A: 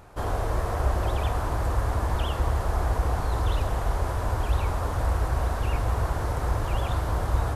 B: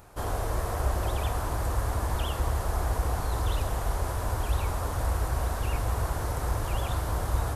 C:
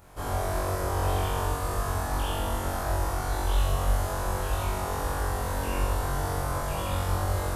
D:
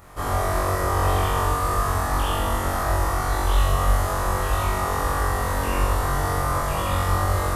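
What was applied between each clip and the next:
treble shelf 6.3 kHz +11 dB; trim -3 dB
flutter echo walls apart 3.7 m, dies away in 1.2 s; trim -4 dB
small resonant body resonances 1.2/1.9 kHz, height 10 dB, ringing for 25 ms; trim +5 dB

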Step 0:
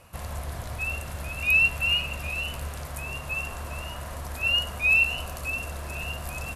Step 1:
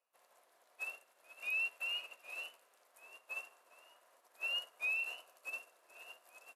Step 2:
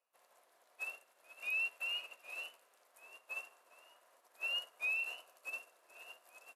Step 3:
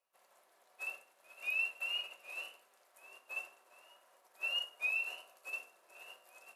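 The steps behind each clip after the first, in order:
high-pass 390 Hz 24 dB/octave; peak limiter -23 dBFS, peak gain reduction 10.5 dB; upward expansion 2.5:1, over -44 dBFS; trim -7 dB
no audible change
simulated room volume 430 m³, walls furnished, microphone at 1.1 m

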